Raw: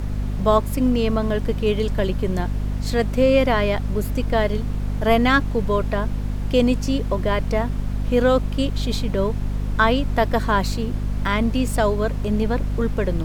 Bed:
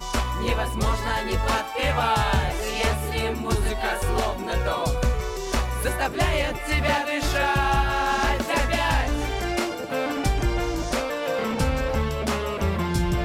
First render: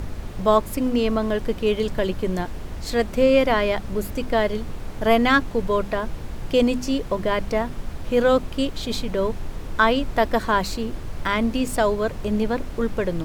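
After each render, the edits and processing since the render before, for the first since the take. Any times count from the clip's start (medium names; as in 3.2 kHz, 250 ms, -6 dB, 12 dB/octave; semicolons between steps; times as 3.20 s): hum notches 50/100/150/200/250 Hz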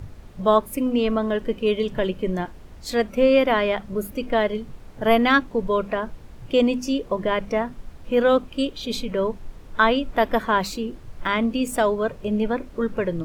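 noise print and reduce 11 dB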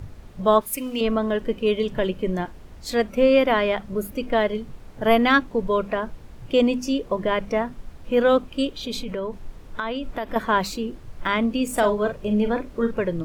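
0.61–1.01 s: tilt shelf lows -8 dB, about 1.5 kHz; 8.80–10.36 s: compression, threshold -24 dBFS; 11.66–12.91 s: doubling 43 ms -8 dB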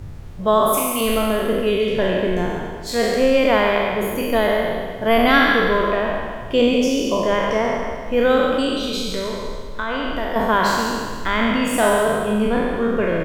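spectral sustain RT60 1.73 s; delay 138 ms -8 dB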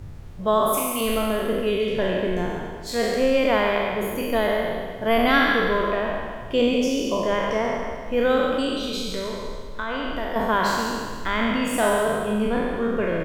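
trim -4 dB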